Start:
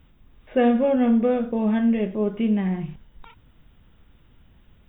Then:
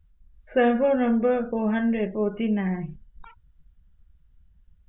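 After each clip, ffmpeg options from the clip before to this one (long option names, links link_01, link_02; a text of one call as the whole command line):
ffmpeg -i in.wav -af "equalizer=frequency=100:width_type=o:width=0.67:gain=-6,equalizer=frequency=250:width_type=o:width=0.67:gain=-4,equalizer=frequency=1600:width_type=o:width=0.67:gain=5,afftdn=noise_reduction=22:noise_floor=-44" out.wav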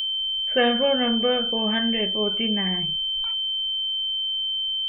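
ffmpeg -i in.wav -af "lowshelf=frequency=430:gain=-3.5,aeval=exprs='val(0)+0.0282*sin(2*PI*3100*n/s)':channel_layout=same,crystalizer=i=4.5:c=0" out.wav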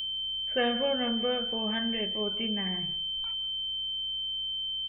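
ffmpeg -i in.wav -filter_complex "[0:a]aeval=exprs='val(0)+0.00251*(sin(2*PI*60*n/s)+sin(2*PI*2*60*n/s)/2+sin(2*PI*3*60*n/s)/3+sin(2*PI*4*60*n/s)/4+sin(2*PI*5*60*n/s)/5)':channel_layout=same,asplit=2[link_01][link_02];[link_02]adelay=169.1,volume=-17dB,highshelf=frequency=4000:gain=-3.8[link_03];[link_01][link_03]amix=inputs=2:normalize=0,volume=-7.5dB" out.wav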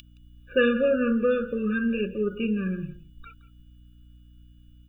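ffmpeg -i in.wav -af "afftfilt=real='re*eq(mod(floor(b*sr/1024/580),2),0)':imag='im*eq(mod(floor(b*sr/1024/580),2),0)':win_size=1024:overlap=0.75,volume=8dB" out.wav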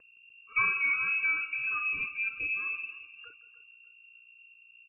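ffmpeg -i in.wav -af "aecho=1:1:301|602|903:0.15|0.0494|0.0163,lowpass=frequency=2400:width_type=q:width=0.5098,lowpass=frequency=2400:width_type=q:width=0.6013,lowpass=frequency=2400:width_type=q:width=0.9,lowpass=frequency=2400:width_type=q:width=2.563,afreqshift=-2800,volume=-6.5dB" out.wav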